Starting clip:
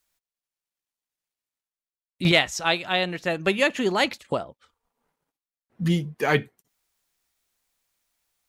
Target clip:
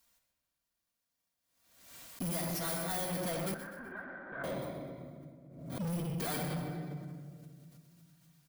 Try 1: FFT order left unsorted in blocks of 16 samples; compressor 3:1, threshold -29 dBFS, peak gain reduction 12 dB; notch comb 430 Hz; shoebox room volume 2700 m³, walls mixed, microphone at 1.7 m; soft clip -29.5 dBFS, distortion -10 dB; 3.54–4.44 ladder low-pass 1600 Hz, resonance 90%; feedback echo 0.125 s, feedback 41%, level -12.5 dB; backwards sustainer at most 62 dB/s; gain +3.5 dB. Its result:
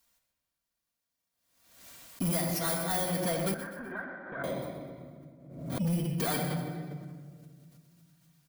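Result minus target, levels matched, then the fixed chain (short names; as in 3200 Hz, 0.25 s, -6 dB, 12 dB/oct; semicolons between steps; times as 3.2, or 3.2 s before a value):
soft clip: distortion -5 dB
FFT order left unsorted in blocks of 16 samples; compressor 3:1, threshold -29 dBFS, peak gain reduction 12 dB; notch comb 430 Hz; shoebox room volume 2700 m³, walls mixed, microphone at 1.7 m; soft clip -37.5 dBFS, distortion -5 dB; 3.54–4.44 ladder low-pass 1600 Hz, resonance 90%; feedback echo 0.125 s, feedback 41%, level -12.5 dB; backwards sustainer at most 62 dB/s; gain +3.5 dB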